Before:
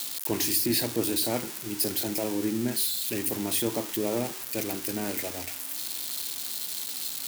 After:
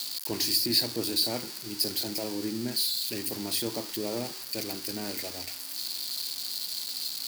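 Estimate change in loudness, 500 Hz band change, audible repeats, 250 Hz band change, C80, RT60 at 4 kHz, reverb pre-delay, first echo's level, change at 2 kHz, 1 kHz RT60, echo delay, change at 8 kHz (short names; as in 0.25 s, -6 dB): -1.5 dB, -4.5 dB, none, -4.5 dB, none, none, none, none, -4.0 dB, none, none, -3.5 dB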